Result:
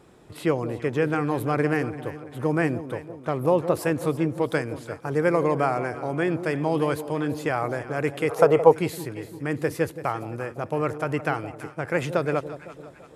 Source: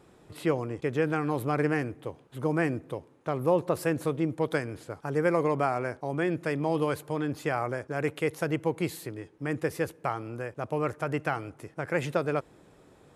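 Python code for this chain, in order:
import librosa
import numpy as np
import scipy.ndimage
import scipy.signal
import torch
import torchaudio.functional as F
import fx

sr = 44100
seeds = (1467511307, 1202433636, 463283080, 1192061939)

y = fx.echo_alternate(x, sr, ms=169, hz=820.0, feedback_pct=66, wet_db=-11.0)
y = fx.spec_box(y, sr, start_s=8.29, length_s=0.44, low_hz=400.0, high_hz=1400.0, gain_db=12)
y = y * librosa.db_to_amplitude(3.5)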